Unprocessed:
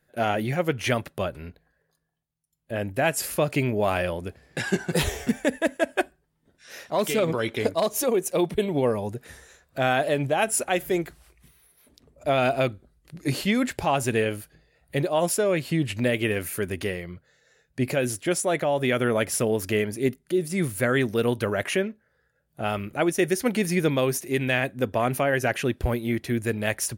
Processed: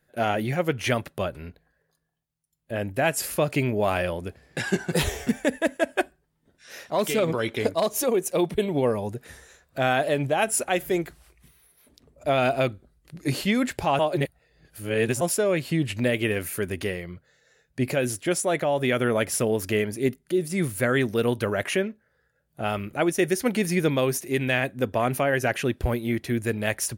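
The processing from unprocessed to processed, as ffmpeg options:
ffmpeg -i in.wav -filter_complex "[0:a]asplit=3[link_01][link_02][link_03];[link_01]atrim=end=13.992[link_04];[link_02]atrim=start=13.988:end=15.212,asetpts=PTS-STARTPTS,areverse[link_05];[link_03]atrim=start=15.208[link_06];[link_04][link_05]acrossfade=duration=0.004:curve1=hsin:curve2=hsin[link_07];[link_07][link_06]acrossfade=duration=0.004:curve1=hsin:curve2=hsin" out.wav

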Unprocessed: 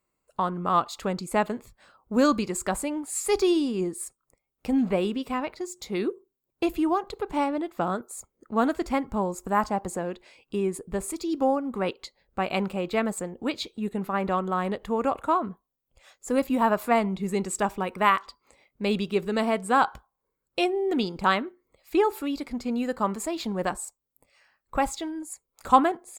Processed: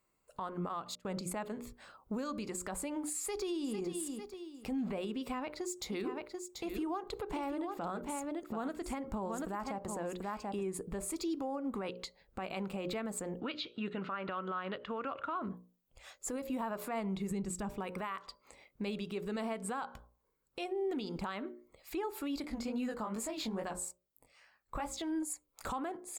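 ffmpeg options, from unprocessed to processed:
ffmpeg -i in.wav -filter_complex "[0:a]asettb=1/sr,asplit=3[link_01][link_02][link_03];[link_01]atrim=end=0.954[link_04];[link_02]atrim=start=0.95:end=1.49,asetpts=PTS-STARTPTS,afade=type=in:duration=0.004:curve=qsin,afade=type=out:start_time=0.536:duration=0.004:curve=qsin,agate=range=-29dB:threshold=-40dB:ratio=16:release=100:detection=peak[link_05];[link_03]atrim=start=1.486[link_06];[link_04][link_05]acrossfade=duration=0.004:curve1=hsin:curve2=qsin[link_07];[link_07][link_06]acrossfade=duration=0.004:curve1=qsin:curve2=hsin,asplit=2[link_08][link_09];[link_09]afade=type=in:start_time=3.19:duration=0.01,afade=type=out:start_time=3.74:duration=0.01,aecho=0:1:450|900|1350:0.223872|0.055968|0.013992[link_10];[link_08][link_10]amix=inputs=2:normalize=0,asplit=3[link_11][link_12][link_13];[link_11]afade=type=out:start_time=5.91:duration=0.02[link_14];[link_12]aecho=1:1:736:0.376,afade=type=in:start_time=5.91:duration=0.02,afade=type=out:start_time=10.62:duration=0.02[link_15];[link_13]afade=type=in:start_time=10.62:duration=0.02[link_16];[link_14][link_15][link_16]amix=inputs=3:normalize=0,asettb=1/sr,asplit=3[link_17][link_18][link_19];[link_17]atrim=end=13.404[link_20];[link_18]atrim=start=13.4:end=15.42,asetpts=PTS-STARTPTS,afade=type=in:duration=0.004:curve=qsin,afade=type=out:start_time=2.016:duration=0.004:curve=qsin,highpass=120,equalizer=frequency=210:width_type=q:width=4:gain=-8,equalizer=frequency=420:width_type=q:width=4:gain=-5,equalizer=frequency=810:width_type=q:width=4:gain=-7,equalizer=frequency=1400:width_type=q:width=4:gain=9,equalizer=frequency=2900:width_type=q:width=4:gain=7,lowpass=frequency=4600:width=0.5412,lowpass=frequency=4600:width=1.3066[link_21];[link_19]atrim=start=15.416[link_22];[link_20][link_21]acrossfade=duration=0.004:curve1=hsin:curve2=qsin[link_23];[link_23][link_22]acrossfade=duration=0.004:curve1=qsin:curve2=hsin,asettb=1/sr,asplit=3[link_24][link_25][link_26];[link_24]atrim=end=17.314[link_27];[link_25]atrim=start=17.31:end=17.71,asetpts=PTS-STARTPTS,afade=type=in:duration=0.004:curve=qsin,afade=type=out:start_time=0.396:duration=0.004:curve=qsin,bass=frequency=250:gain=14,treble=frequency=4000:gain=1[link_28];[link_26]atrim=start=17.706[link_29];[link_27][link_28]acrossfade=duration=0.004:curve1=hsin:curve2=qsin[link_30];[link_30][link_29]acrossfade=duration=0.004:curve1=qsin:curve2=hsin,asettb=1/sr,asplit=3[link_31][link_32][link_33];[link_31]atrim=end=22.424[link_34];[link_32]atrim=start=22.42:end=25.02,asetpts=PTS-STARTPTS,afade=type=in:duration=0.004:curve=qsin,afade=type=out:start_time=2.596:duration=0.004:curve=qsin,flanger=delay=16.5:depth=6.7:speed=2.4[link_35];[link_33]atrim=start=25.016[link_36];[link_34][link_35]acrossfade=duration=0.004:curve1=hsin:curve2=qsin[link_37];[link_37][link_36]acrossfade=duration=0.004:curve1=qsin:curve2=hsin,bandreject=frequency=60:width_type=h:width=6,bandreject=frequency=120:width_type=h:width=6,bandreject=frequency=180:width_type=h:width=6,bandreject=frequency=240:width_type=h:width=6,bandreject=frequency=300:width_type=h:width=6,bandreject=frequency=360:width_type=h:width=6,bandreject=frequency=420:width_type=h:width=6,bandreject=frequency=480:width_type=h:width=6,bandreject=frequency=540:width_type=h:width=6,bandreject=frequency=600:width_type=h:width=6,acompressor=threshold=-32dB:ratio=3,alimiter=level_in=6.5dB:limit=-24dB:level=0:latency=1:release=100,volume=-6.5dB,volume=1dB" out.wav

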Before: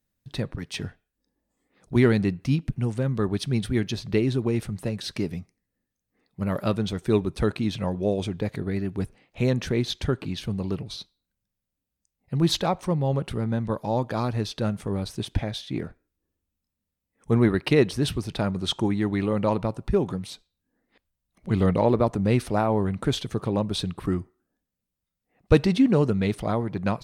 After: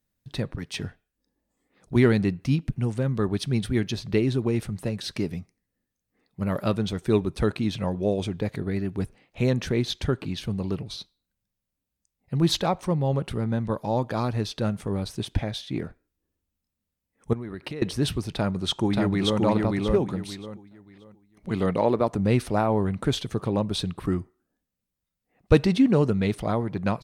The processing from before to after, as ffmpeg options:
ffmpeg -i in.wav -filter_complex "[0:a]asettb=1/sr,asplit=3[link_01][link_02][link_03];[link_01]atrim=end=17.334[link_04];[link_02]atrim=start=17.33:end=17.82,asetpts=PTS-STARTPTS,afade=type=in:duration=0.004:curve=qsin,afade=type=out:start_time=0.486:duration=0.004:curve=qsin,acompressor=threshold=-30dB:ratio=16:attack=3.2:release=140:knee=1:detection=peak[link_05];[link_03]atrim=start=17.816[link_06];[link_04][link_05]acrossfade=duration=0.004:curve1=hsin:curve2=qsin[link_07];[link_07][link_06]acrossfade=duration=0.004:curve1=qsin:curve2=hsin,asplit=2[link_08][link_09];[link_09]afade=type=in:start_time=18.32:duration=0.01,afade=type=out:start_time=19.41:duration=0.01,aecho=0:1:580|1160|1740|2320:0.841395|0.210349|0.0525872|0.0131468[link_10];[link_08][link_10]amix=inputs=2:normalize=0,asettb=1/sr,asplit=3[link_11][link_12][link_13];[link_11]atrim=end=21.504[link_14];[link_12]atrim=start=21.5:end=22.13,asetpts=PTS-STARTPTS,afade=type=in:duration=0.004:curve=qsin,afade=type=out:start_time=0.626:duration=0.004:curve=qsin,highpass=frequency=230:poles=1[link_15];[link_13]atrim=start=22.126[link_16];[link_14][link_15]acrossfade=duration=0.004:curve1=hsin:curve2=qsin[link_17];[link_17][link_16]acrossfade=duration=0.004:curve1=qsin:curve2=hsin" out.wav

